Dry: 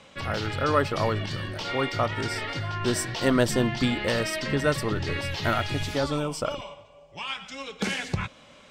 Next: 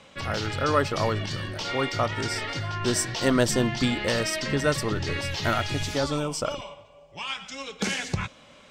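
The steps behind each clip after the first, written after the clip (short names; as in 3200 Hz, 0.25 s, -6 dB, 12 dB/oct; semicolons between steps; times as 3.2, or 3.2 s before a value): dynamic EQ 6400 Hz, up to +6 dB, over -51 dBFS, Q 1.4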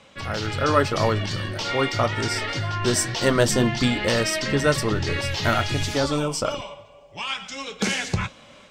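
AGC gain up to 4 dB; flange 1.9 Hz, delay 8.6 ms, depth 1.5 ms, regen -63%; gain +4 dB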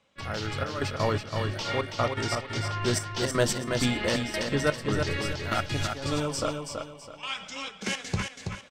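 step gate "..xxxxx..x.xx" 166 bpm -12 dB; on a send: feedback echo 0.328 s, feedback 31%, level -5.5 dB; on the sum: gain -5 dB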